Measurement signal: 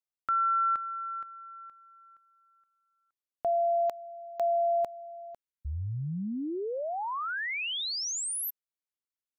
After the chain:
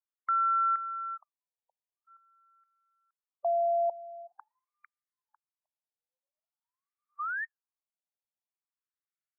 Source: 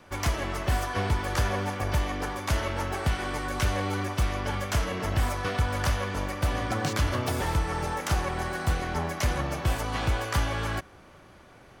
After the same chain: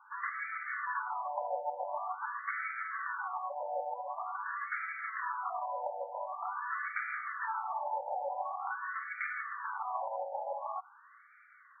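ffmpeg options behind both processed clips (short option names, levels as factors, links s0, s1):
-af "highpass=410,lowpass=6000,afftfilt=real='re*between(b*sr/1024,670*pow(1700/670,0.5+0.5*sin(2*PI*0.46*pts/sr))/1.41,670*pow(1700/670,0.5+0.5*sin(2*PI*0.46*pts/sr))*1.41)':imag='im*between(b*sr/1024,670*pow(1700/670,0.5+0.5*sin(2*PI*0.46*pts/sr))/1.41,670*pow(1700/670,0.5+0.5*sin(2*PI*0.46*pts/sr))*1.41)':win_size=1024:overlap=0.75"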